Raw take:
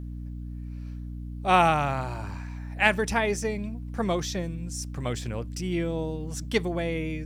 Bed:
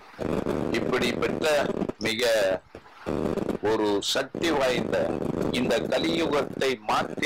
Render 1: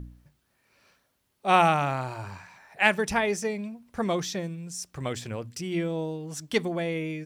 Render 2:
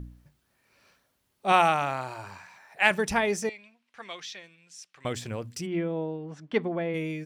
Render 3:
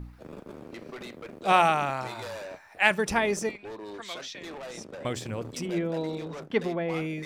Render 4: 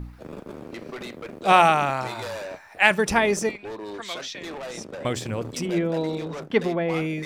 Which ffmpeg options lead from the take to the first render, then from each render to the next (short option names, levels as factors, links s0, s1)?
-af "bandreject=f=60:t=h:w=4,bandreject=f=120:t=h:w=4,bandreject=f=180:t=h:w=4,bandreject=f=240:t=h:w=4,bandreject=f=300:t=h:w=4"
-filter_complex "[0:a]asettb=1/sr,asplit=3[s0][s1][s2];[s0]atrim=end=1.524[s3];[s1]atrim=start=1.52:end=2.91,asetpts=PTS-STARTPTS,afade=t=in:d=0.004:c=qsin,afade=t=out:st=1.386:d=0.004:c=qsin,lowshelf=f=240:g=-10.5[s4];[s2]atrim=start=2.906[s5];[s3][s4]acrossfade=d=0.004:c1=hsin:c2=qsin[s6];[s6][s5]acrossfade=d=0.004:c1=qsin:c2=hsin,asettb=1/sr,asplit=3[s7][s8][s9];[s7]atrim=end=3.494[s10];[s8]atrim=start=3.49:end=5.05,asetpts=PTS-STARTPTS,afade=t=in:d=0.004:c=qsin,afade=t=out:st=1.556:d=0.004:c=qsin,bandpass=f=2700:t=q:w=1.4[s11];[s9]atrim=start=5.046[s12];[s10][s11]acrossfade=d=0.004:c1=hsin:c2=qsin[s13];[s13][s12]acrossfade=d=0.004:c1=qsin:c2=hsin,asplit=3[s14][s15][s16];[s14]afade=t=out:st=5.65:d=0.02[s17];[s15]highpass=150,lowpass=2100,afade=t=in:st=5.65:d=0.02,afade=t=out:st=6.93:d=0.02[s18];[s16]afade=t=in:st=6.93:d=0.02[s19];[s17][s18][s19]amix=inputs=3:normalize=0"
-filter_complex "[1:a]volume=0.15[s0];[0:a][s0]amix=inputs=2:normalize=0"
-af "volume=1.78,alimiter=limit=0.794:level=0:latency=1"